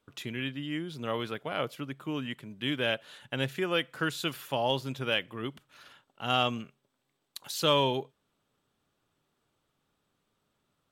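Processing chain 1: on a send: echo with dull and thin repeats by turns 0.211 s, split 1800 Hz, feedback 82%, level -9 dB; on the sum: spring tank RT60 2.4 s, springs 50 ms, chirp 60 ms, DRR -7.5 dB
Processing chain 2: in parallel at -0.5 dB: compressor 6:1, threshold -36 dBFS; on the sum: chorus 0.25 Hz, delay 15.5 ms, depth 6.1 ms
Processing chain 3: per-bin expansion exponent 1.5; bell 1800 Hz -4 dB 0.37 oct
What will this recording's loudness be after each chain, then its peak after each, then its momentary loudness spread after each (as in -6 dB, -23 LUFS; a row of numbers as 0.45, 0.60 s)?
-24.0, -32.0, -34.5 LUFS; -6.5, -15.0, -14.5 dBFS; 16, 12, 15 LU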